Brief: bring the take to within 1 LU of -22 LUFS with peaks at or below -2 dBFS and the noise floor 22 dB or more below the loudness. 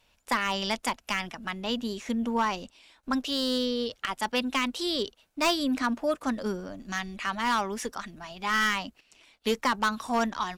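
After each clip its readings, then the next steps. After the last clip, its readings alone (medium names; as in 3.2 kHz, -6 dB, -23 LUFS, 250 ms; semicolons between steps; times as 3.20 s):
clipped samples 0.6%; clipping level -19.0 dBFS; loudness -29.0 LUFS; peak level -19.0 dBFS; loudness target -22.0 LUFS
-> clip repair -19 dBFS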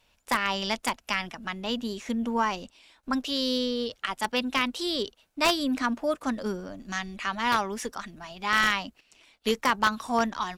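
clipped samples 0.0%; loudness -28.0 LUFS; peak level -10.0 dBFS; loudness target -22.0 LUFS
-> trim +6 dB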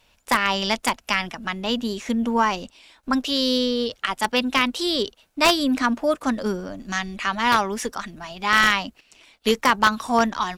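loudness -22.0 LUFS; peak level -4.0 dBFS; noise floor -61 dBFS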